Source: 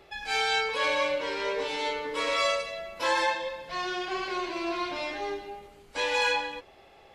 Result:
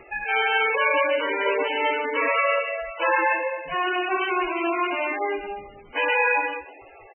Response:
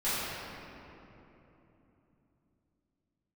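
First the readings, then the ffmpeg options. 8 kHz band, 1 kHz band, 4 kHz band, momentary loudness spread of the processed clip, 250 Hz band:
under -40 dB, +6.5 dB, -1.5 dB, 8 LU, +6.0 dB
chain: -filter_complex "[0:a]lowpass=7.4k,equalizer=f=2.6k:t=o:w=2.6:g=4,bandreject=f=60:t=h:w=6,bandreject=f=120:t=h:w=6,bandreject=f=180:t=h:w=6,asplit=2[a][b];[b]alimiter=limit=-19.5dB:level=0:latency=1:release=32,volume=1dB[c];[a][c]amix=inputs=2:normalize=0,asoftclip=type=hard:threshold=-15dB,asplit=2[d][e];[e]adelay=213,lowpass=f=3.9k:p=1,volume=-21dB,asplit=2[f][g];[g]adelay=213,lowpass=f=3.9k:p=1,volume=0.21[h];[d][f][h]amix=inputs=3:normalize=0" -ar 22050 -c:a libmp3lame -b:a 8k

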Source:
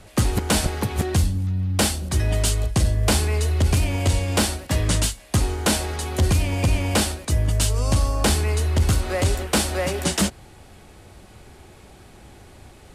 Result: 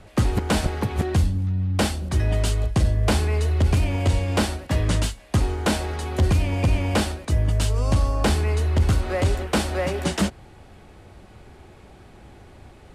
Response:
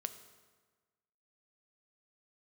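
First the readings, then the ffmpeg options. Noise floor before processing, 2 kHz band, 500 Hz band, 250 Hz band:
-47 dBFS, -2.0 dB, 0.0 dB, 0.0 dB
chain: -af "highshelf=f=4.6k:g=-11.5"

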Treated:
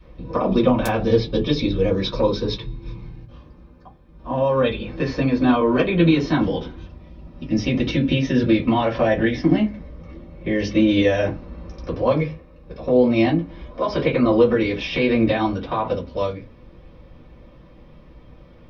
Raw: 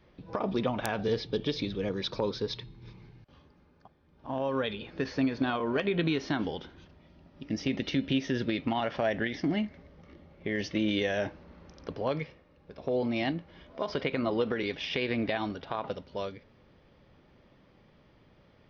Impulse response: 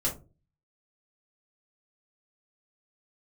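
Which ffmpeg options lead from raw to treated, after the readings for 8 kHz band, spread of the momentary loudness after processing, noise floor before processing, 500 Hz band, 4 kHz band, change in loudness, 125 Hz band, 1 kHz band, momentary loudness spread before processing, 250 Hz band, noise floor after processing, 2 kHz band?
n/a, 15 LU, -62 dBFS, +12.0 dB, +6.5 dB, +11.5 dB, +13.5 dB, +10.5 dB, 11 LU, +12.0 dB, -47 dBFS, +7.5 dB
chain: -filter_complex "[1:a]atrim=start_sample=2205,asetrate=83790,aresample=44100[a];[0:a][a]afir=irnorm=-1:irlink=0,volume=7dB"

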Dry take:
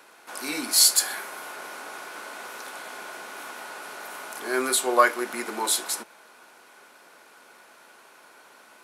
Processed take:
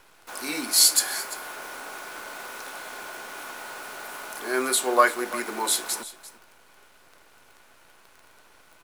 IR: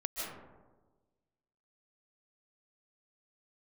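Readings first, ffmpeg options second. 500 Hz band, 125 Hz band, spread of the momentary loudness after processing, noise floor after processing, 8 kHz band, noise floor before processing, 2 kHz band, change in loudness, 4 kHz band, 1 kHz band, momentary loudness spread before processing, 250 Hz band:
0.0 dB, n/a, 20 LU, -56 dBFS, 0.0 dB, -53 dBFS, 0.0 dB, -1.0 dB, 0.0 dB, 0.0 dB, 20 LU, 0.0 dB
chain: -filter_complex "[0:a]acrusher=bits=8:dc=4:mix=0:aa=0.000001,asplit=2[a][b];[b]aecho=0:1:344:0.15[c];[a][c]amix=inputs=2:normalize=0"

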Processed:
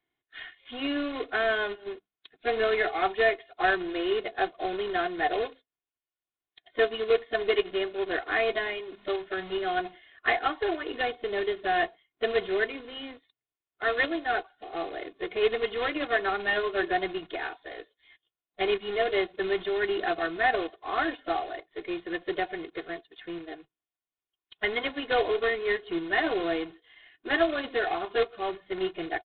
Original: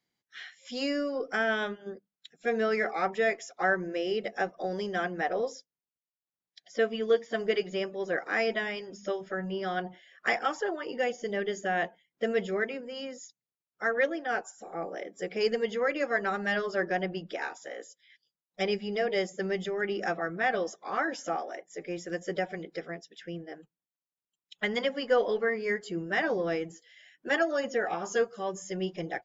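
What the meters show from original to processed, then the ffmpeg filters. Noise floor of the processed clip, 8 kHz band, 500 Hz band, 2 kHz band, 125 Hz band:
under -85 dBFS, n/a, +1.5 dB, +2.0 dB, -7.5 dB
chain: -af "aresample=8000,acrusher=bits=2:mode=log:mix=0:aa=0.000001,aresample=44100,equalizer=f=220:t=o:w=0.32:g=-7,aecho=1:1:2.8:0.67"

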